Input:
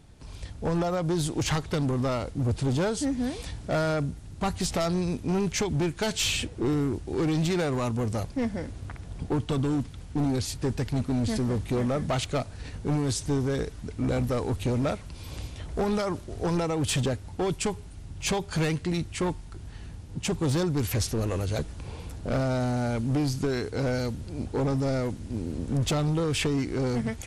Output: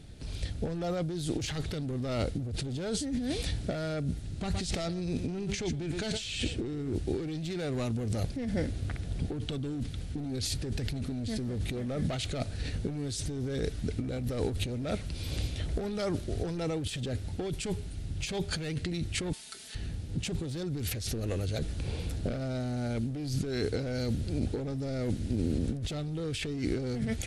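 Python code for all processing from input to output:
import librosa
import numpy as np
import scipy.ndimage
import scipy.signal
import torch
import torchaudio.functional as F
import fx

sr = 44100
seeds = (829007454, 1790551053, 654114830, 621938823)

y = fx.chain(x, sr, fx.lowpass(hz=10000.0, slope=24),
    fx.echo_single(ms=117, db=-14.5), at=(4.22, 6.95))
y = fx.chain(y, sr, fx.highpass(hz=780.0, slope=6),
    fx.tilt_eq(slope=3.0),
    fx.comb(ms=4.6, depth=0.87), at=(19.33, 19.75))
y = fx.graphic_eq_15(y, sr, hz=(1000, 4000, 10000), db=(-12, 5, 5))
y = fx.over_compress(y, sr, threshold_db=-32.0, ratio=-1.0)
y = fx.high_shelf(y, sr, hz=5400.0, db=-7.5)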